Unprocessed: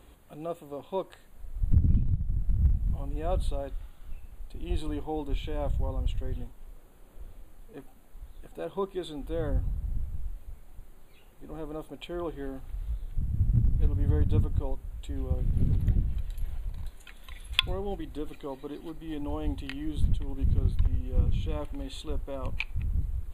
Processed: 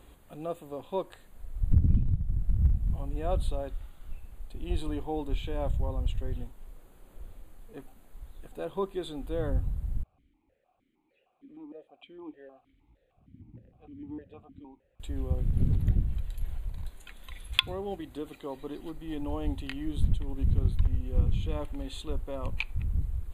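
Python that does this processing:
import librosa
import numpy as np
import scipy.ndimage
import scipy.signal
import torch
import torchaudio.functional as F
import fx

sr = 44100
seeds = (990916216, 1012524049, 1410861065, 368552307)

y = fx.vowel_held(x, sr, hz=6.5, at=(10.03, 15.0))
y = fx.highpass(y, sr, hz=140.0, slope=6, at=(17.57, 18.56))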